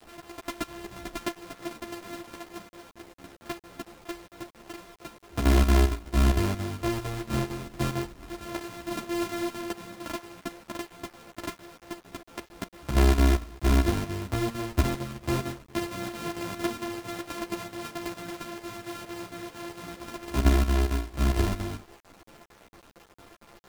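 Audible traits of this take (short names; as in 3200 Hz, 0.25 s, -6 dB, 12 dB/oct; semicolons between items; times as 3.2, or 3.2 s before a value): a buzz of ramps at a fixed pitch in blocks of 128 samples; chopped level 4.4 Hz, depth 65%, duty 75%; a quantiser's noise floor 8-bit, dither none; a shimmering, thickened sound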